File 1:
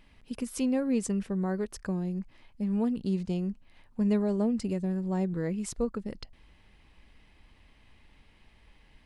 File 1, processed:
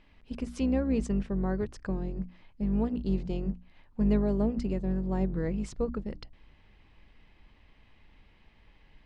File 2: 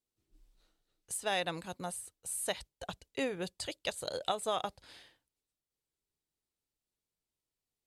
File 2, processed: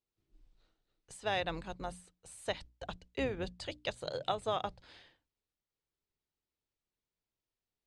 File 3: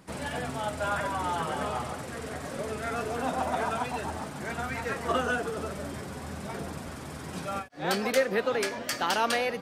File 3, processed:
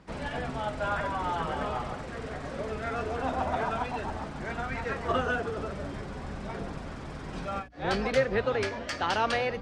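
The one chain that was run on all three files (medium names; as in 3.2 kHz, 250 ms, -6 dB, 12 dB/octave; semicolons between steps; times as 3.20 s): octave divider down 2 oct, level -3 dB; distance through air 110 m; hum notches 60/120/180/240/300 Hz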